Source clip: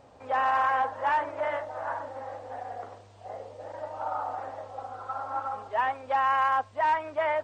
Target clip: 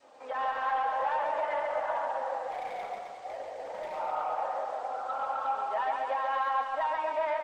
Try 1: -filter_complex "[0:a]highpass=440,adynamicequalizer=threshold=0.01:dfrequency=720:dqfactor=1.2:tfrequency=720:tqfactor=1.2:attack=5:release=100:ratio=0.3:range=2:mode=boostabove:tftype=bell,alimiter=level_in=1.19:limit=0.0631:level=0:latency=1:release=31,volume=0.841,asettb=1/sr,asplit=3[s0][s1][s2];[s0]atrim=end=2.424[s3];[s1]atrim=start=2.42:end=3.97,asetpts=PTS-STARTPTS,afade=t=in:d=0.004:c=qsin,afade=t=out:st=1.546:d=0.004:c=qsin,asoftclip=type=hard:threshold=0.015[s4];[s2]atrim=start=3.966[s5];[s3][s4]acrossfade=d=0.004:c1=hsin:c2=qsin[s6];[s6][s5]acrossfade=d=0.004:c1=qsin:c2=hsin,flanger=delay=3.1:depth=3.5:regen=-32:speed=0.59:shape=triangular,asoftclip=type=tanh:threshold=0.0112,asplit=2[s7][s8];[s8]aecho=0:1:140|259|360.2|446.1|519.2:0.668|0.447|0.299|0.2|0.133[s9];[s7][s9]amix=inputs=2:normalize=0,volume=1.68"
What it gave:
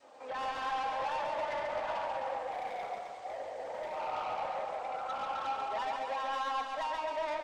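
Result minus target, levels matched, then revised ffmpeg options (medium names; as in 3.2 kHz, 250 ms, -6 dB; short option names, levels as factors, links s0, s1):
saturation: distortion +13 dB
-filter_complex "[0:a]highpass=440,adynamicequalizer=threshold=0.01:dfrequency=720:dqfactor=1.2:tfrequency=720:tqfactor=1.2:attack=5:release=100:ratio=0.3:range=2:mode=boostabove:tftype=bell,alimiter=level_in=1.19:limit=0.0631:level=0:latency=1:release=31,volume=0.841,asettb=1/sr,asplit=3[s0][s1][s2];[s0]atrim=end=2.424[s3];[s1]atrim=start=2.42:end=3.97,asetpts=PTS-STARTPTS,afade=t=in:d=0.004:c=qsin,afade=t=out:st=1.546:d=0.004:c=qsin,asoftclip=type=hard:threshold=0.015[s4];[s2]atrim=start=3.966[s5];[s3][s4]acrossfade=d=0.004:c1=hsin:c2=qsin[s6];[s6][s5]acrossfade=d=0.004:c1=qsin:c2=hsin,flanger=delay=3.1:depth=3.5:regen=-32:speed=0.59:shape=triangular,asoftclip=type=tanh:threshold=0.0376,asplit=2[s7][s8];[s8]aecho=0:1:140|259|360.2|446.1|519.2:0.668|0.447|0.299|0.2|0.133[s9];[s7][s9]amix=inputs=2:normalize=0,volume=1.68"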